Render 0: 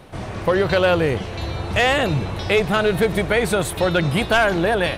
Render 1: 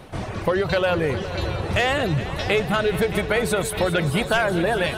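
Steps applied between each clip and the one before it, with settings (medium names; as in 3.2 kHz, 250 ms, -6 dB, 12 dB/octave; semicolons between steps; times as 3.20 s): reverb removal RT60 0.81 s; compression 2:1, threshold -22 dBFS, peak gain reduction 6 dB; multi-head delay 207 ms, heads all three, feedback 60%, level -16 dB; trim +1.5 dB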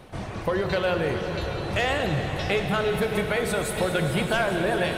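reverberation RT60 3.9 s, pre-delay 16 ms, DRR 4.5 dB; trim -4.5 dB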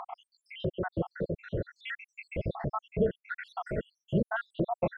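random holes in the spectrogram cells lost 84%; low-pass 1.2 kHz 12 dB/octave; upward compressor, threshold -30 dBFS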